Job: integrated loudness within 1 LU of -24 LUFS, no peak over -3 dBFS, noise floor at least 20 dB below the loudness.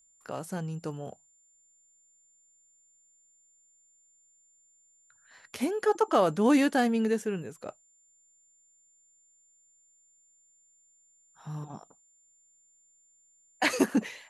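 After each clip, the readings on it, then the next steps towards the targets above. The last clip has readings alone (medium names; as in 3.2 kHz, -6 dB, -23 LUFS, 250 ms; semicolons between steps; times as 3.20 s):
steady tone 7.2 kHz; tone level -62 dBFS; loudness -28.5 LUFS; peak level -10.0 dBFS; loudness target -24.0 LUFS
-> band-stop 7.2 kHz, Q 30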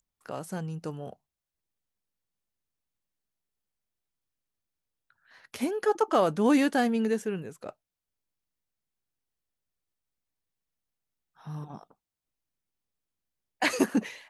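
steady tone not found; loudness -27.5 LUFS; peak level -10.0 dBFS; loudness target -24.0 LUFS
-> trim +3.5 dB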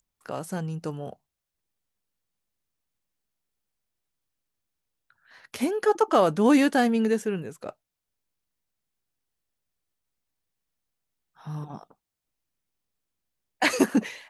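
loudness -24.0 LUFS; peak level -6.5 dBFS; noise floor -85 dBFS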